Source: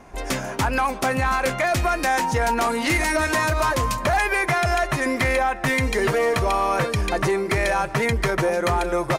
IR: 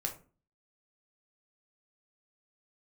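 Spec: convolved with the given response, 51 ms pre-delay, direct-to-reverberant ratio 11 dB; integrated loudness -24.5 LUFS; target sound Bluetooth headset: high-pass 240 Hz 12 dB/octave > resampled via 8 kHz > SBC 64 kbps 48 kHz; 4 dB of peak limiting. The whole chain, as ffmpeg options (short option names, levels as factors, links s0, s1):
-filter_complex "[0:a]alimiter=limit=0.119:level=0:latency=1,asplit=2[s0][s1];[1:a]atrim=start_sample=2205,adelay=51[s2];[s1][s2]afir=irnorm=-1:irlink=0,volume=0.237[s3];[s0][s3]amix=inputs=2:normalize=0,highpass=240,aresample=8000,aresample=44100,volume=1.19" -ar 48000 -c:a sbc -b:a 64k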